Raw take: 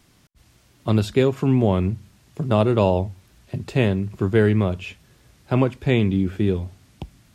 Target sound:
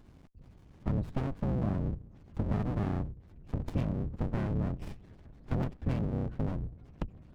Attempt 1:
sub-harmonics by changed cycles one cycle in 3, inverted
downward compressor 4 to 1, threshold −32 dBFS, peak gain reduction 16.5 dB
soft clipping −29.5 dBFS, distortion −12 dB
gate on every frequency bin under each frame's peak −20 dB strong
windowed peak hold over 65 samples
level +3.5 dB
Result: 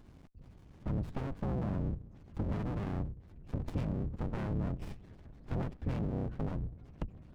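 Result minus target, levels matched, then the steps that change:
soft clipping: distortion +11 dB
change: soft clipping −21 dBFS, distortion −22 dB

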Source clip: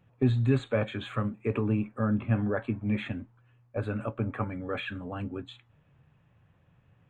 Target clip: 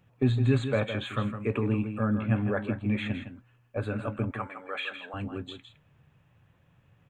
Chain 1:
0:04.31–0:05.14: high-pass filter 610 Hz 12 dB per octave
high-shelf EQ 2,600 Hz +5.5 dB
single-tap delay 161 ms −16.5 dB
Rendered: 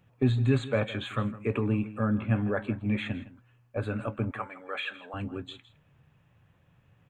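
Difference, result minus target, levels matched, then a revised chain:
echo-to-direct −7.5 dB
0:04.31–0:05.14: high-pass filter 610 Hz 12 dB per octave
high-shelf EQ 2,600 Hz +5.5 dB
single-tap delay 161 ms −9 dB

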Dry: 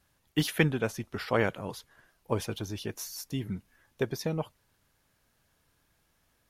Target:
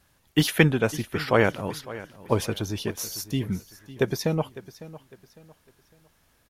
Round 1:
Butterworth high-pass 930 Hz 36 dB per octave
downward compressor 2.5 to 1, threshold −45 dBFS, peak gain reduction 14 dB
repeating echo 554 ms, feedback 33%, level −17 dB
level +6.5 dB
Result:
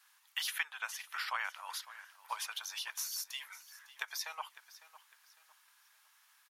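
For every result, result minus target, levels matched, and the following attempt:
downward compressor: peak gain reduction +14 dB; 1,000 Hz band +3.5 dB
Butterworth high-pass 930 Hz 36 dB per octave
repeating echo 554 ms, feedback 33%, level −17 dB
level +6.5 dB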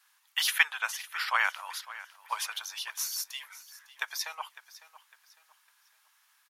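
1,000 Hz band +3.0 dB
repeating echo 554 ms, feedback 33%, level −17 dB
level +6.5 dB

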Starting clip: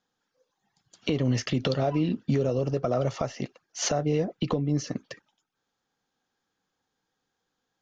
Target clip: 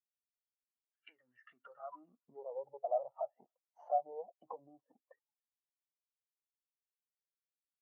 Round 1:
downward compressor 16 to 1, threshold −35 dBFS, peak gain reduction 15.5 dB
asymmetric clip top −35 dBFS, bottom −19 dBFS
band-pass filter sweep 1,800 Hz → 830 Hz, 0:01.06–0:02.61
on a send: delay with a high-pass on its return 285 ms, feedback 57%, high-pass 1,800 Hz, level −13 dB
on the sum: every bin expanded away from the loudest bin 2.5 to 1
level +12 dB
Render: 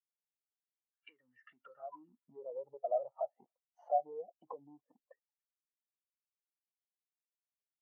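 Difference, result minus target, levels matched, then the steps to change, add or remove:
asymmetric clip: distortion −7 dB
change: asymmetric clip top −44.5 dBFS, bottom −19 dBFS

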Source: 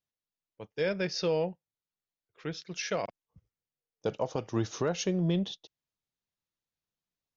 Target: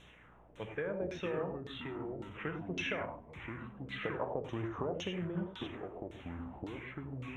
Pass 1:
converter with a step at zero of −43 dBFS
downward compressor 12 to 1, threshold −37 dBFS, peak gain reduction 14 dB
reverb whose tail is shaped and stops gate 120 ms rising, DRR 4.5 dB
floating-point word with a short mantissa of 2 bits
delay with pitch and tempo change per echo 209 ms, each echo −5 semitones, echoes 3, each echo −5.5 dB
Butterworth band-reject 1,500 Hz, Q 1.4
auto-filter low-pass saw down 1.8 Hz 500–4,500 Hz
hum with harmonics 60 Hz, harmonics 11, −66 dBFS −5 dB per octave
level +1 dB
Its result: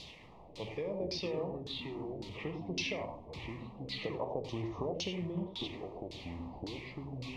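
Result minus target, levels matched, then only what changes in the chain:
4,000 Hz band +6.0 dB; converter with a step at zero: distortion +7 dB
change: converter with a step at zero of −50.5 dBFS
change: Butterworth band-reject 4,700 Hz, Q 1.4

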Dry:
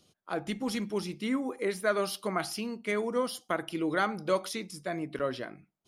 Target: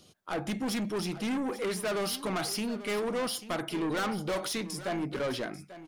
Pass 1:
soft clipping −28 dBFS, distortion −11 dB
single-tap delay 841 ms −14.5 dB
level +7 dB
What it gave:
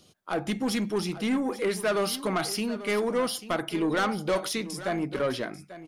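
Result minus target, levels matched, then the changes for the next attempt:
soft clipping: distortion −5 dB
change: soft clipping −35.5 dBFS, distortion −6 dB

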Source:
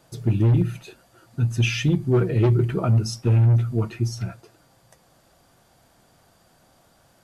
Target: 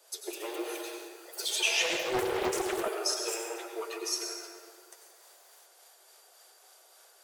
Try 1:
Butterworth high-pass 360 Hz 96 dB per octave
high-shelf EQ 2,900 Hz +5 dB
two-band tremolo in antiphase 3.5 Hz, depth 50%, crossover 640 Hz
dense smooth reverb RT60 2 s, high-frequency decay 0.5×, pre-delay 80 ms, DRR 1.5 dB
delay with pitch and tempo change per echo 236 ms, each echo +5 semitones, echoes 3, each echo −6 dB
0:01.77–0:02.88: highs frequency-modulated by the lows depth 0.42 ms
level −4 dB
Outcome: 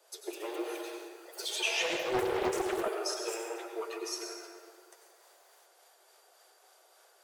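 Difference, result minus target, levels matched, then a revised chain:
8,000 Hz band −3.5 dB
Butterworth high-pass 360 Hz 96 dB per octave
high-shelf EQ 2,900 Hz +12.5 dB
two-band tremolo in antiphase 3.5 Hz, depth 50%, crossover 640 Hz
dense smooth reverb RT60 2 s, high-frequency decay 0.5×, pre-delay 80 ms, DRR 1.5 dB
delay with pitch and tempo change per echo 236 ms, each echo +5 semitones, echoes 3, each echo −6 dB
0:01.77–0:02.88: highs frequency-modulated by the lows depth 0.42 ms
level −4 dB

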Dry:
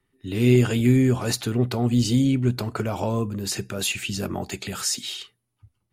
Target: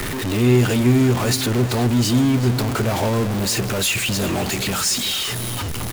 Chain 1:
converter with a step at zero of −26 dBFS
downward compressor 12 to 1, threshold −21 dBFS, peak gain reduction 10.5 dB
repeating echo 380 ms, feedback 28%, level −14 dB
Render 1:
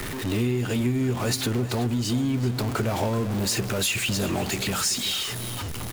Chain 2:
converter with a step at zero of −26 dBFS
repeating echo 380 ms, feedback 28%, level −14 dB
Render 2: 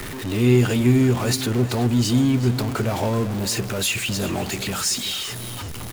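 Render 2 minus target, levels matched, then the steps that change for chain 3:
converter with a step at zero: distortion −5 dB
change: converter with a step at zero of −19.5 dBFS

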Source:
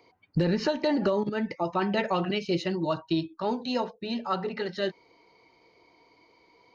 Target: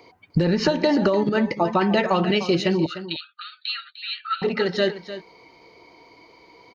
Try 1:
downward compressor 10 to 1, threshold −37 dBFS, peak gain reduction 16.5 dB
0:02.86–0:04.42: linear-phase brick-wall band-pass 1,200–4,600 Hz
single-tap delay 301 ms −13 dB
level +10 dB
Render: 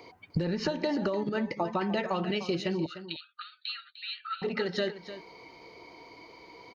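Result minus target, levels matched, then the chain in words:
downward compressor: peak gain reduction +10.5 dB
downward compressor 10 to 1, threshold −25.5 dBFS, peak gain reduction 6 dB
0:02.86–0:04.42: linear-phase brick-wall band-pass 1,200–4,600 Hz
single-tap delay 301 ms −13 dB
level +10 dB

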